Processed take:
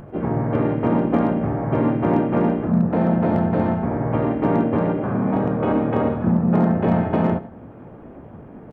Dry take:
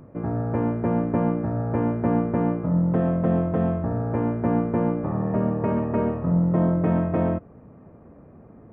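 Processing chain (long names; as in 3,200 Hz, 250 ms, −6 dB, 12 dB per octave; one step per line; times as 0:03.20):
in parallel at −1 dB: downward compressor 10 to 1, threshold −35 dBFS, peak gain reduction 18.5 dB
on the sum: flanger 0.72 Hz, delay 1.2 ms, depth 9.8 ms, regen −46%
repeating echo 99 ms, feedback 33%, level −16.5 dB
pitch-shifted copies added +3 semitones −5 dB, +5 semitones −3 dB
hard clipping −12.5 dBFS, distortion −31 dB
level +3.5 dB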